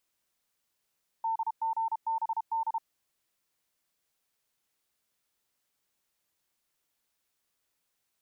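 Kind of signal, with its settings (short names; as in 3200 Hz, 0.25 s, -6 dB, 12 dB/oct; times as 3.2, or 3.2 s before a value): Morse "DGBD" 32 wpm 901 Hz -27 dBFS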